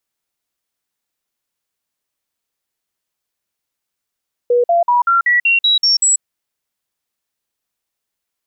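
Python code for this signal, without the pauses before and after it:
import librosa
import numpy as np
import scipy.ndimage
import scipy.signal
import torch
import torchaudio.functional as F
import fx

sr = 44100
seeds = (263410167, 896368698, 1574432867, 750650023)

y = fx.stepped_sweep(sr, from_hz=485.0, direction='up', per_octave=2, tones=9, dwell_s=0.14, gap_s=0.05, level_db=-9.5)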